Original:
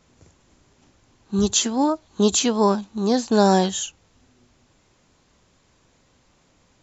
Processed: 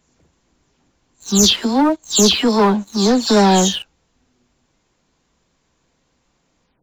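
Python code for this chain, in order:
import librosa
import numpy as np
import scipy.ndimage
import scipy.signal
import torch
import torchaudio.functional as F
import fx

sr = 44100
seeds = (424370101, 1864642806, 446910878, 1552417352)

y = fx.spec_delay(x, sr, highs='early', ms=198)
y = fx.leveller(y, sr, passes=2)
y = fx.dynamic_eq(y, sr, hz=3900.0, q=1.2, threshold_db=-34.0, ratio=4.0, max_db=5)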